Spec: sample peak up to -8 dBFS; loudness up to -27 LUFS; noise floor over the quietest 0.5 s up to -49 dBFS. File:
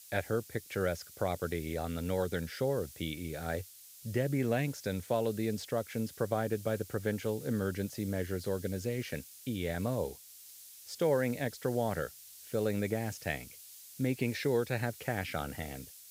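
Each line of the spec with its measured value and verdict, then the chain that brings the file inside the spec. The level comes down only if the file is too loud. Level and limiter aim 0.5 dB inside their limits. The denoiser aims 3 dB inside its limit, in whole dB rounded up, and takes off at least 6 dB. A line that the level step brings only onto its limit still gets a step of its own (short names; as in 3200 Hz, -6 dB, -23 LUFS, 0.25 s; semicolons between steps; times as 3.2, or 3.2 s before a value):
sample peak -16.5 dBFS: OK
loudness -35.0 LUFS: OK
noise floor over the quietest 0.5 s -53 dBFS: OK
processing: none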